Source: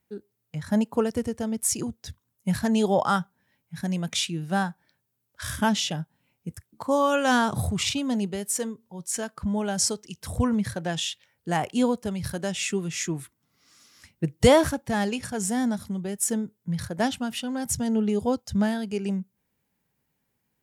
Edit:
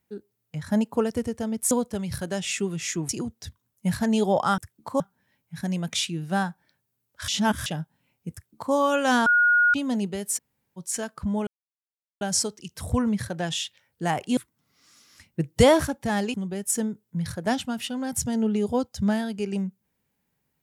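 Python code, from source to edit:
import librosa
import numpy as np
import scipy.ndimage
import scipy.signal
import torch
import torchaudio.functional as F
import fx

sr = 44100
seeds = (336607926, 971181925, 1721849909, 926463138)

y = fx.edit(x, sr, fx.reverse_span(start_s=5.48, length_s=0.38),
    fx.duplicate(start_s=6.52, length_s=0.42, to_s=3.2),
    fx.bleep(start_s=7.46, length_s=0.48, hz=1440.0, db=-15.5),
    fx.room_tone_fill(start_s=8.58, length_s=0.39, crossfade_s=0.02),
    fx.insert_silence(at_s=9.67, length_s=0.74),
    fx.move(start_s=11.83, length_s=1.38, to_s=1.71),
    fx.cut(start_s=15.18, length_s=0.69), tone=tone)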